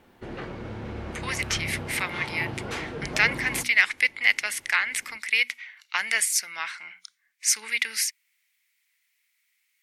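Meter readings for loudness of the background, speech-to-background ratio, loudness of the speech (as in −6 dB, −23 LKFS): −35.5 LKFS, 10.5 dB, −25.0 LKFS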